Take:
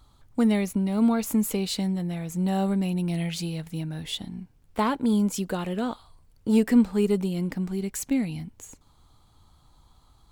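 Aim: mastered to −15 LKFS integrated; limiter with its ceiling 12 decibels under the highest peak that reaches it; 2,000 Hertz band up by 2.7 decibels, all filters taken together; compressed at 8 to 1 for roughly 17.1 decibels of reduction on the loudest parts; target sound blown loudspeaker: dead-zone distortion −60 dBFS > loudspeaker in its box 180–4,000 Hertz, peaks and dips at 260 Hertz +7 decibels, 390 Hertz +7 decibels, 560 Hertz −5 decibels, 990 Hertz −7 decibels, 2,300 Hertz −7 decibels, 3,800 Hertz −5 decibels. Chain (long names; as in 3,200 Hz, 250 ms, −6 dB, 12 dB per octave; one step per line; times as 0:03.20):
parametric band 2,000 Hz +7 dB
downward compressor 8 to 1, threshold −32 dBFS
brickwall limiter −32 dBFS
dead-zone distortion −60 dBFS
loudspeaker in its box 180–4,000 Hz, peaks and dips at 260 Hz +7 dB, 390 Hz +7 dB, 560 Hz −5 dB, 990 Hz −7 dB, 2,300 Hz −7 dB, 3,800 Hz −5 dB
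level +25.5 dB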